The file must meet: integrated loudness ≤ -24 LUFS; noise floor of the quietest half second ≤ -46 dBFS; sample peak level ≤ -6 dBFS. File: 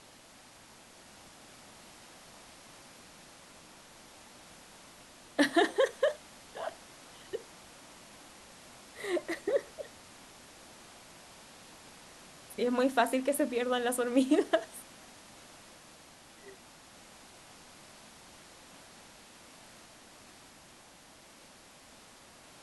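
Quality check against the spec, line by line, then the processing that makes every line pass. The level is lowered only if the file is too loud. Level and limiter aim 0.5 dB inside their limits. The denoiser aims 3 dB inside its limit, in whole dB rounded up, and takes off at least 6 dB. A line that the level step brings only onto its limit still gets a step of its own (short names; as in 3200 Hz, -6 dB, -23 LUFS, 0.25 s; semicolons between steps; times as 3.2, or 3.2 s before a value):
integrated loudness -31.5 LUFS: OK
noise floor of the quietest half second -56 dBFS: OK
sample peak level -12.5 dBFS: OK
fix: none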